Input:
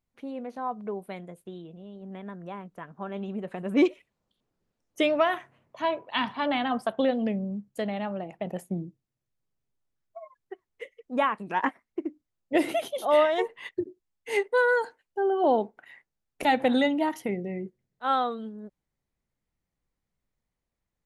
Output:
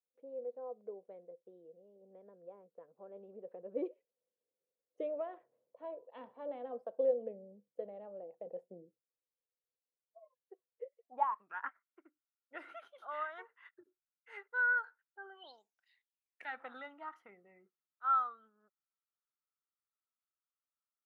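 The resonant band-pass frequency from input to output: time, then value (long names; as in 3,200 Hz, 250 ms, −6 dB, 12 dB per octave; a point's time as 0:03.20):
resonant band-pass, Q 11
0:10.83 500 Hz
0:11.55 1,400 Hz
0:15.26 1,400 Hz
0:15.63 7,500 Hz
0:16.58 1,300 Hz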